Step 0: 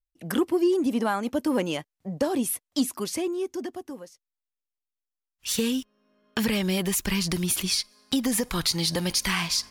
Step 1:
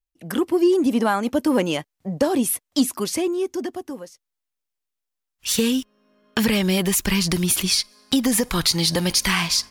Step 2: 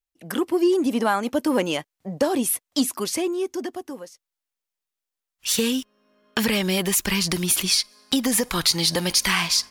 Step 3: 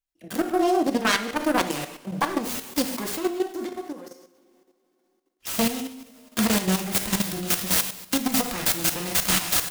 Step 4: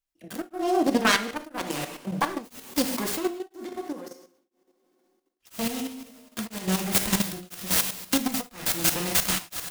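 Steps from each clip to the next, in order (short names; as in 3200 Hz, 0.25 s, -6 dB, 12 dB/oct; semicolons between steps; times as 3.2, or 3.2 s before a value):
AGC gain up to 5.5 dB
low shelf 220 Hz -7.5 dB
self-modulated delay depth 0.79 ms; two-slope reverb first 0.72 s, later 3.3 s, from -22 dB, DRR 1.5 dB; level quantiser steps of 10 dB
beating tremolo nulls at 1 Hz; gain +1.5 dB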